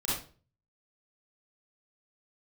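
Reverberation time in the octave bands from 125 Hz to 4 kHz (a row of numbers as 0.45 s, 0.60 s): 0.65 s, 0.45 s, 0.45 s, 0.35 s, 0.30 s, 0.30 s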